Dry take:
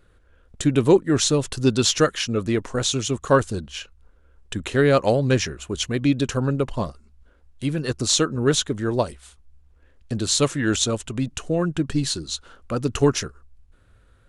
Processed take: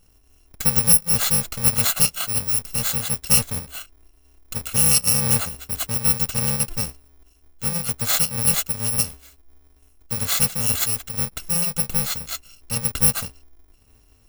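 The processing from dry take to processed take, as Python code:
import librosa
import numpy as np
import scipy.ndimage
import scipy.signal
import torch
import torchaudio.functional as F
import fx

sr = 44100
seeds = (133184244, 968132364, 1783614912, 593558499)

y = fx.bit_reversed(x, sr, seeds[0], block=128)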